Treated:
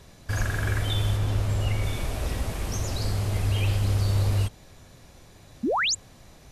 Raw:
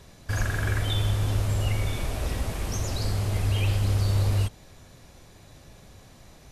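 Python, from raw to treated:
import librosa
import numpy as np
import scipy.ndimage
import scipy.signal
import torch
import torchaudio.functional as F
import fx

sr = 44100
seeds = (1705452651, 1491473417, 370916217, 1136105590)

y = fx.high_shelf(x, sr, hz=fx.line((1.16, 5200.0), (1.82, 9000.0)), db=-6.0, at=(1.16, 1.82), fade=0.02)
y = fx.spec_paint(y, sr, seeds[0], shape='rise', start_s=5.63, length_s=0.32, low_hz=200.0, high_hz=8000.0, level_db=-24.0)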